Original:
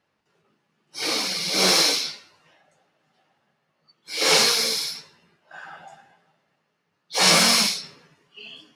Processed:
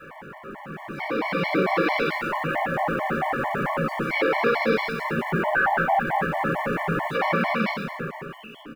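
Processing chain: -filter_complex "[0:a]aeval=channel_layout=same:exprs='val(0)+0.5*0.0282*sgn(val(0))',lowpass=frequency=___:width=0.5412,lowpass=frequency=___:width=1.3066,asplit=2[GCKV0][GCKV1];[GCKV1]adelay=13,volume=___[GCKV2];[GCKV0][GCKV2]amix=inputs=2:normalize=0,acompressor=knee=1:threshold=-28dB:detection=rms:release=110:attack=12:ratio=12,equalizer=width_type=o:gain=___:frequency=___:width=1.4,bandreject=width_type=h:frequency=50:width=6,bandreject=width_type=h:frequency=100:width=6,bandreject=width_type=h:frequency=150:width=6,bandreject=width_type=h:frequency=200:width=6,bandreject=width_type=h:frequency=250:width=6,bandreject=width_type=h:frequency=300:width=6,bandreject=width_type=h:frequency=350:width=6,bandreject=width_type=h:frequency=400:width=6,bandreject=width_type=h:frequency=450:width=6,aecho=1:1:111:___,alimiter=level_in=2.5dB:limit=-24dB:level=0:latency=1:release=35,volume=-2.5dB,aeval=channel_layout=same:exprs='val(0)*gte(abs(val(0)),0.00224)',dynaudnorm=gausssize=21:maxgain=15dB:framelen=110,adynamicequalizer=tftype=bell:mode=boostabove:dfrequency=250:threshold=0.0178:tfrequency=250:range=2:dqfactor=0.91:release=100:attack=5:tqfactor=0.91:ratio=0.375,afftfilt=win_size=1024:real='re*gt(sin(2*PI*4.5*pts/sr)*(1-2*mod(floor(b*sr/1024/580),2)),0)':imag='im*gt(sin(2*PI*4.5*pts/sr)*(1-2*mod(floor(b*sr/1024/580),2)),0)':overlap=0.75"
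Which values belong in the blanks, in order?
2000, 2000, -13dB, -6.5, 70, 0.447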